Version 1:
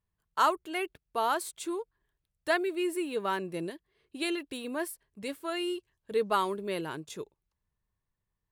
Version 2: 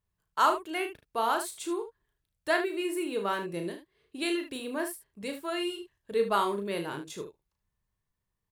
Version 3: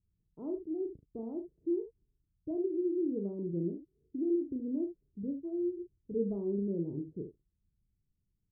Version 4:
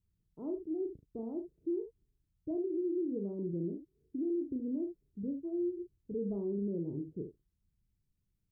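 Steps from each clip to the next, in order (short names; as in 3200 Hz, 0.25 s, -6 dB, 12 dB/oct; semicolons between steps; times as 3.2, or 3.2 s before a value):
early reflections 35 ms -6.5 dB, 75 ms -10.5 dB
inverse Chebyshev low-pass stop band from 1500 Hz, stop band 70 dB; gain +4.5 dB
limiter -28.5 dBFS, peak gain reduction 6.5 dB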